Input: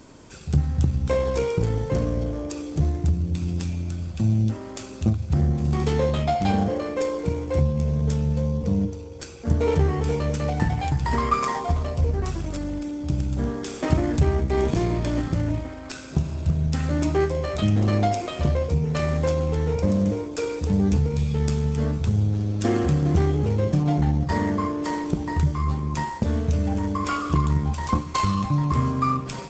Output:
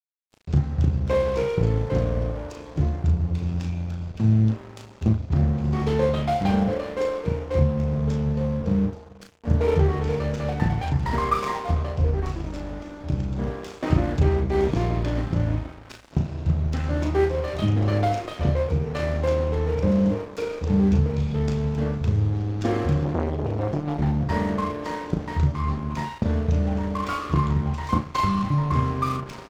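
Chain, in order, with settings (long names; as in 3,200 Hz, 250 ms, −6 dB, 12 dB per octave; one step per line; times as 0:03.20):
low-pass filter 5,200 Hz 12 dB per octave
high-shelf EQ 4,000 Hz −4 dB
dead-zone distortion −36.5 dBFS
double-tracking delay 36 ms −5.5 dB
slap from a distant wall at 68 metres, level −29 dB
0:23.05–0:23.99: saturating transformer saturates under 610 Hz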